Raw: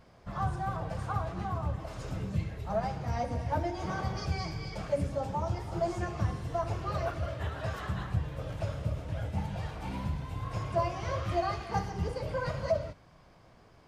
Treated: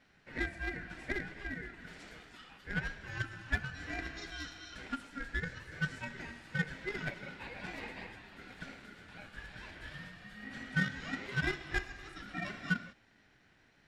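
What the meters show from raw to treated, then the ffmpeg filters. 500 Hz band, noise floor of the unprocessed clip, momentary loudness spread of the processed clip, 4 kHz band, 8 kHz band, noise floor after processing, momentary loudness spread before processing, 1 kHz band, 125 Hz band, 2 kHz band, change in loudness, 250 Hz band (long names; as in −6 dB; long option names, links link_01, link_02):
−14.0 dB, −58 dBFS, 15 LU, 0.0 dB, −4.0 dB, −67 dBFS, 5 LU, −13.5 dB, −10.5 dB, +7.5 dB, −5.5 dB, −4.0 dB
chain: -filter_complex "[0:a]highpass=frequency=730:width=0.5412,highpass=frequency=730:width=1.3066,aeval=exprs='val(0)*sin(2*PI*830*n/s)':channel_layout=same,highshelf=frequency=7200:gain=-10.5,asplit=2[link_01][link_02];[link_02]acrusher=bits=4:mix=0:aa=0.5,volume=-5.5dB[link_03];[link_01][link_03]amix=inputs=2:normalize=0,bandreject=frequency=6100:width=17,volume=1.5dB"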